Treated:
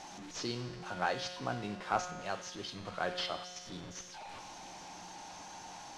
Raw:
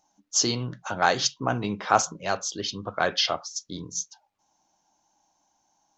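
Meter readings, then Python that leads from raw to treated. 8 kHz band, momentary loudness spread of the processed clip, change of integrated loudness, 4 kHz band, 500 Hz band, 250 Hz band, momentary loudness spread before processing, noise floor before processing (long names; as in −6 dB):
−18.0 dB, 12 LU, −13.5 dB, −13.0 dB, −10.5 dB, −10.0 dB, 10 LU, −72 dBFS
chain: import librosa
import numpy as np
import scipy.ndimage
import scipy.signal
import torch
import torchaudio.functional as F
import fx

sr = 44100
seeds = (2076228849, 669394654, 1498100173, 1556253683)

y = fx.delta_mod(x, sr, bps=64000, step_db=-30.0)
y = scipy.signal.sosfilt(scipy.signal.butter(2, 5100.0, 'lowpass', fs=sr, output='sos'), y)
y = fx.comb_fb(y, sr, f0_hz=180.0, decay_s=1.7, harmonics='all', damping=0.0, mix_pct=80)
y = y * 10.0 ** (2.0 / 20.0)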